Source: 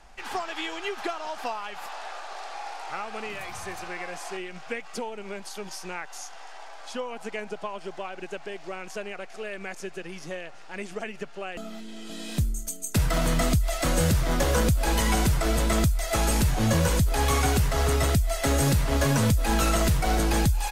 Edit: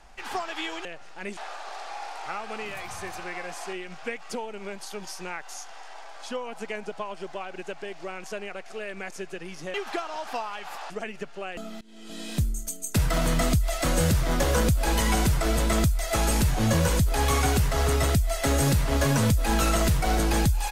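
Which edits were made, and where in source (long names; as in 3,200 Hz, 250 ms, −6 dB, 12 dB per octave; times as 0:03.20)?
0:00.85–0:02.01: swap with 0:10.38–0:10.90
0:11.81–0:12.19: fade in, from −22.5 dB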